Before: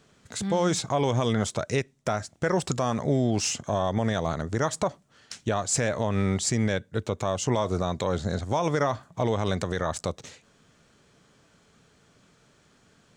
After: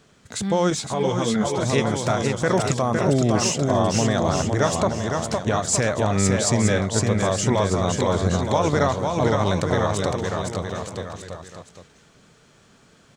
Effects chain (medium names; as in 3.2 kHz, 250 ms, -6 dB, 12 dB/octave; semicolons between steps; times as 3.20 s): 2.81–3.11 s: time-frequency box 1.3–8.4 kHz -11 dB; bouncing-ball echo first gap 510 ms, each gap 0.8×, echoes 5; 0.70–1.62 s: three-phase chorus; trim +4 dB